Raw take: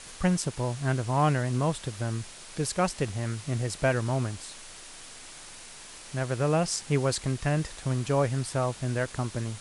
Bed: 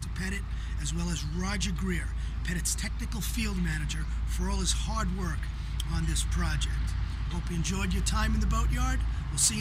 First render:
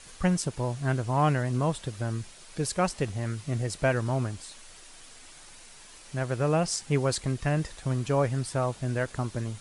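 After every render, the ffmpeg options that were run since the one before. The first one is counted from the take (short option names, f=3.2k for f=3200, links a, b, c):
-af "afftdn=nr=6:nf=-46"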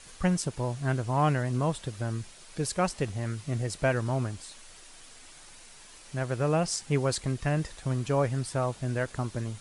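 -af "volume=-1dB"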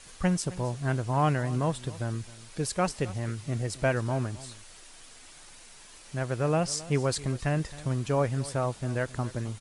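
-af "aecho=1:1:266:0.119"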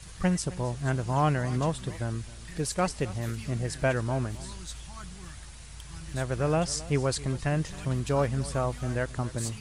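-filter_complex "[1:a]volume=-13dB[a];[0:a][a]amix=inputs=2:normalize=0"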